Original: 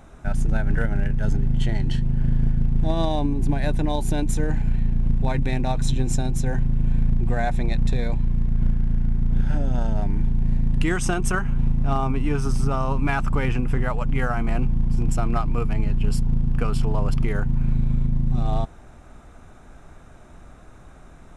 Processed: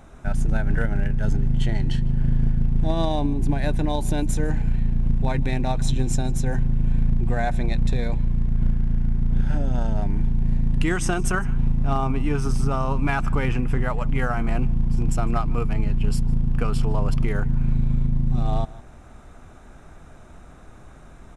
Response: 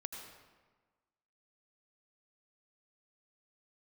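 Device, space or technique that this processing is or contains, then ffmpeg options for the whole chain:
ducked delay: -filter_complex "[0:a]asplit=3[a][b][c];[b]adelay=155,volume=-7dB[d];[c]apad=whole_len=949107[e];[d][e]sidechaincompress=threshold=-36dB:ratio=5:attack=16:release=333[f];[a][f]amix=inputs=2:normalize=0"

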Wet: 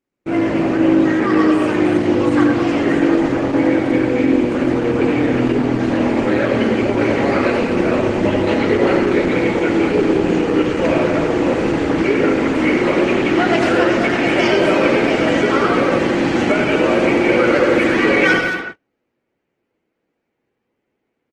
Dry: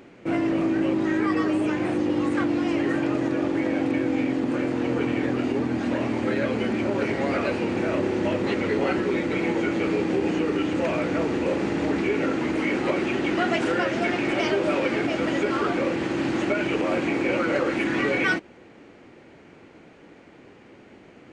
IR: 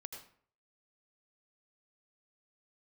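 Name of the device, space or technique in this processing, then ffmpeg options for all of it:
speakerphone in a meeting room: -filter_complex "[1:a]atrim=start_sample=2205[a];[0:a][a]afir=irnorm=-1:irlink=0,asplit=2[b][c];[c]adelay=220,highpass=300,lowpass=3.4k,asoftclip=type=hard:threshold=-24dB,volume=-7dB[d];[b][d]amix=inputs=2:normalize=0,dynaudnorm=f=120:g=5:m=7dB,agate=range=-34dB:threshold=-34dB:ratio=16:detection=peak,volume=6dB" -ar 48000 -c:a libopus -b:a 16k

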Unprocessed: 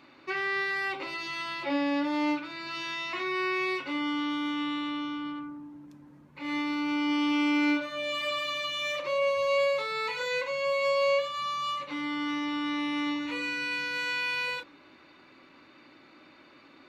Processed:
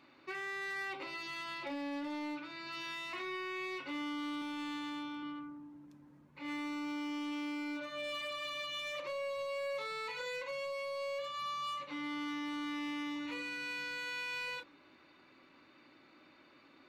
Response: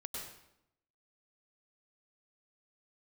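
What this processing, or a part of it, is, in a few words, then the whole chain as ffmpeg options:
limiter into clipper: -filter_complex "[0:a]alimiter=level_in=1dB:limit=-24dB:level=0:latency=1:release=77,volume=-1dB,asoftclip=type=hard:threshold=-28dB,asettb=1/sr,asplit=3[a][b][c];[a]atrim=end=4.394[d];[b]atrim=start=4.39:end=5.23,asetpts=PTS-STARTPTS,afade=t=in:d=0.004:c=qsin,afade=t=out:st=0.836:d=0.004:c=qsin,asplit=2[e][f];[f]adelay=25,volume=-5dB[g];[e][g]amix=inputs=2:normalize=0,atrim=end_sample=37044[h];[c]atrim=start=5.226[i];[d][h]acrossfade=d=0.004:c1=hsin:c2=qsin[j];[j][i]acrossfade=d=0.004:c1=qsin:c2=hsin,volume=-7dB"

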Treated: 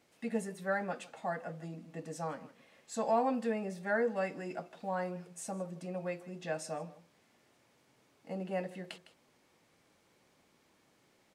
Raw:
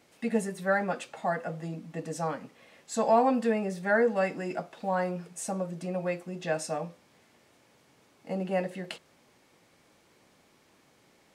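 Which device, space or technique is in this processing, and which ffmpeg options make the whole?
ducked delay: -filter_complex "[0:a]asplit=3[a][b][c];[b]adelay=157,volume=-7dB[d];[c]apad=whole_len=507395[e];[d][e]sidechaincompress=threshold=-43dB:ratio=8:attack=36:release=540[f];[a][f]amix=inputs=2:normalize=0,volume=-7dB"

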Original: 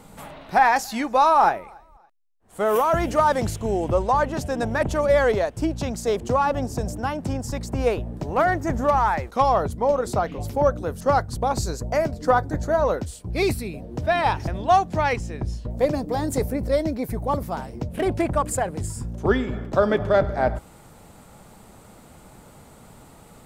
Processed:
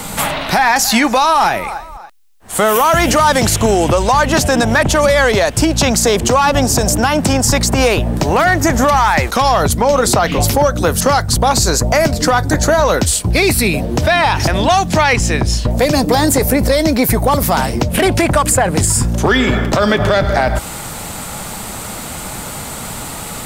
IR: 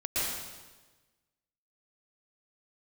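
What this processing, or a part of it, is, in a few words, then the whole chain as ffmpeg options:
mastering chain: -filter_complex "[0:a]equalizer=f=430:t=o:w=0.77:g=-2.5,acrossover=split=270|2300[a][b][c];[a]acompressor=threshold=-30dB:ratio=4[d];[b]acompressor=threshold=-26dB:ratio=4[e];[c]acompressor=threshold=-39dB:ratio=4[f];[d][e][f]amix=inputs=3:normalize=0,acompressor=threshold=-28dB:ratio=2.5,asoftclip=type=tanh:threshold=-19.5dB,tiltshelf=f=1.3k:g=-5,alimiter=level_in=26dB:limit=-1dB:release=50:level=0:latency=1,volume=-2.5dB"

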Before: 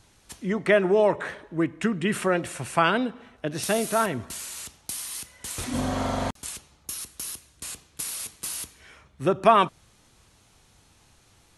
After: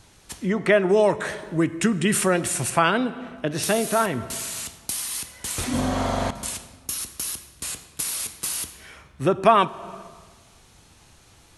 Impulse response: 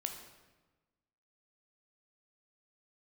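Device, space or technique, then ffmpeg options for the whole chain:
compressed reverb return: -filter_complex "[0:a]asettb=1/sr,asplit=3[a][b][c];[a]atrim=end=0.894[d];[b]atrim=start=0.89:end=2.7,asetpts=PTS-STARTPTS,afade=t=in:d=0.004:c=qsin,afade=t=out:st=1.806:d=0.004:c=qsin,bass=f=250:g=3,treble=f=4k:g=11[e];[c]atrim=start=2.696[f];[d][e]acrossfade=d=0.004:c1=hsin:c2=qsin[g];[g][f]acrossfade=d=0.004:c1=qsin:c2=hsin,asplit=2[h][i];[1:a]atrim=start_sample=2205[j];[i][j]afir=irnorm=-1:irlink=0,acompressor=threshold=-30dB:ratio=6,volume=0dB[k];[h][k]amix=inputs=2:normalize=0"

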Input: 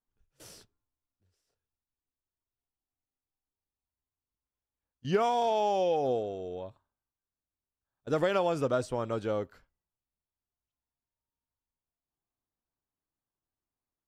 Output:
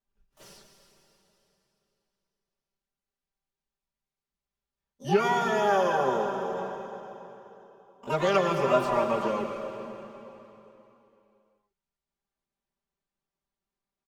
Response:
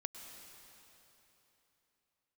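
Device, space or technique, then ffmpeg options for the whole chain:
shimmer-style reverb: -filter_complex "[0:a]lowpass=6.2k,asplit=2[a][b];[b]asetrate=88200,aresample=44100,atempo=0.5,volume=-6dB[c];[a][c]amix=inputs=2:normalize=0[d];[1:a]atrim=start_sample=2205[e];[d][e]afir=irnorm=-1:irlink=0,asettb=1/sr,asplit=3[f][g][h];[f]atrim=end=8.664[i];[g]atrim=start=8.66:end=9.28,asetpts=PTS-STARTPTS,afade=t=in:d=0.004:c=qsin,afade=t=out:st=0.616:d=0.004:c=qsin,equalizer=f=820:w=1.5:g=5.5[j];[h]atrim=start=9.276[k];[i][j]acrossfade=d=0.004:c1=hsin:c2=qsin[l];[l][k]acrossfade=d=0.004:c1=qsin:c2=hsin,aecho=1:1:5.1:0.93,volume=2dB"

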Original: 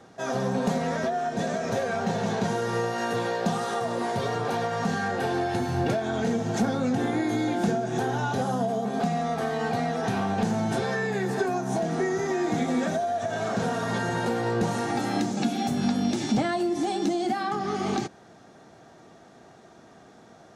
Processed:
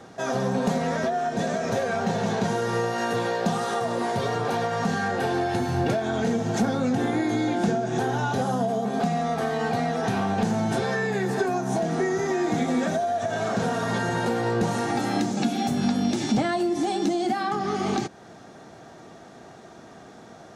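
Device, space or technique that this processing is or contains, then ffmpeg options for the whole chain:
parallel compression: -filter_complex "[0:a]asplit=2[a][b];[b]acompressor=threshold=-37dB:ratio=6,volume=-1dB[c];[a][c]amix=inputs=2:normalize=0,asettb=1/sr,asplit=3[d][e][f];[d]atrim=end=7.274[g];[e]atrim=start=7.27:end=8,asetpts=PTS-STARTPTS,afade=t=in:d=0.004:c=qsin,afade=t=out:st=0.726:d=0.004:c=qsin,lowpass=9.6k[h];[f]atrim=start=7.996[i];[g][h]acrossfade=d=0.004:c1=hsin:c2=qsin[j];[j][i]acrossfade=d=0.004:c1=qsin:c2=hsin"

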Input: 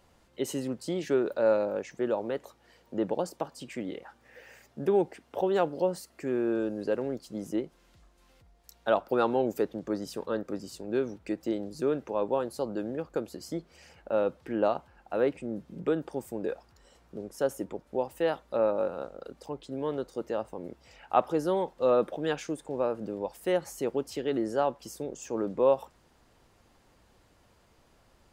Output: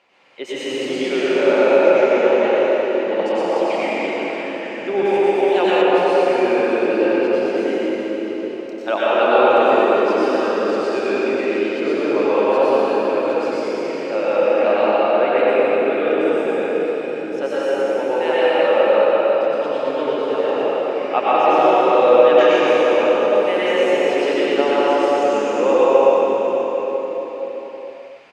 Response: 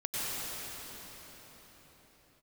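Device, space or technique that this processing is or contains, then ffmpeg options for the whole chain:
station announcement: -filter_complex "[0:a]highpass=400,lowpass=4.2k,equalizer=f=2.4k:t=o:w=0.52:g=11.5,aecho=1:1:119.5|207:0.631|0.282[a];[1:a]atrim=start_sample=2205[b];[a][b]afir=irnorm=-1:irlink=0,asettb=1/sr,asplit=3[c][d][e];[c]atrim=end=5.054[f];[d]atrim=start=5.05:end=5.82,asetpts=PTS-STARTPTS,afade=t=in:d=0.004:c=qsin,afade=t=out:st=0.766:d=0.004:c=qsin,aemphasis=mode=production:type=50fm[g];[e]atrim=start=5.816[h];[f][g]acrossfade=d=0.004:c1=hsin:c2=qsin[i];[i][h]acrossfade=d=0.004:c1=qsin:c2=hsin,volume=6.5dB"

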